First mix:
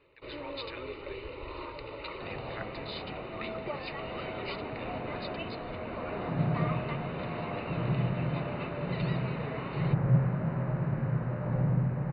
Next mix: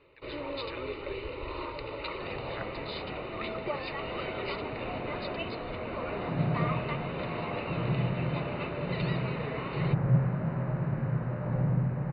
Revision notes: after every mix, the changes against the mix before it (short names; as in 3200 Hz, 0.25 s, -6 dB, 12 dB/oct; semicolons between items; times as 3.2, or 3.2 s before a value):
first sound +3.5 dB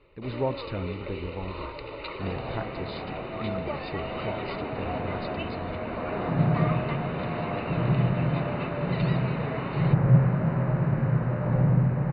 speech: remove resonant high-pass 2100 Hz, resonance Q 1.7; second sound +6.0 dB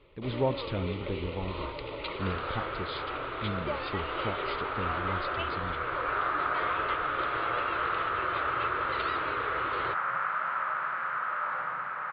second sound: add resonant high-pass 1300 Hz, resonance Q 5.7; master: remove Butterworth band-stop 3300 Hz, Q 6.3